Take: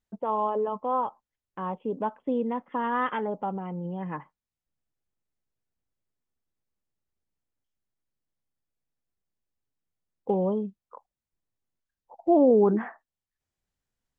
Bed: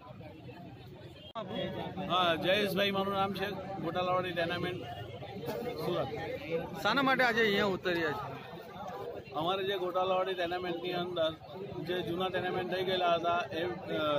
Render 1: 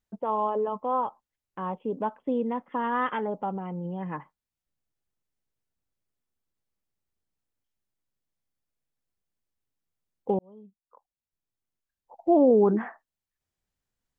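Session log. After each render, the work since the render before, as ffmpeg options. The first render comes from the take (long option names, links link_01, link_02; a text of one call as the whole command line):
ffmpeg -i in.wav -filter_complex "[0:a]asplit=2[link_01][link_02];[link_01]atrim=end=10.39,asetpts=PTS-STARTPTS,afade=type=out:start_time=10.386:duration=0.004:curve=hsin[link_03];[link_02]atrim=start=10.39,asetpts=PTS-STARTPTS,afade=type=in:duration=1.91[link_04];[link_03][link_04]concat=n=2:v=0:a=1" out.wav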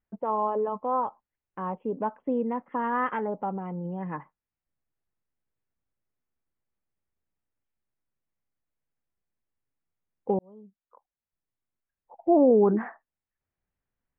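ffmpeg -i in.wav -af "lowpass=frequency=2400:width=0.5412,lowpass=frequency=2400:width=1.3066" out.wav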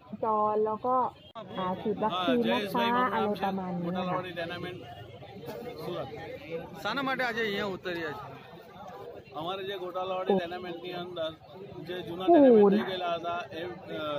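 ffmpeg -i in.wav -i bed.wav -filter_complex "[1:a]volume=-2.5dB[link_01];[0:a][link_01]amix=inputs=2:normalize=0" out.wav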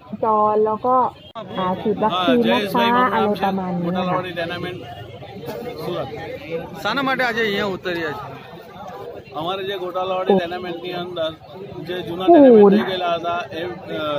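ffmpeg -i in.wav -af "volume=10.5dB,alimiter=limit=-2dB:level=0:latency=1" out.wav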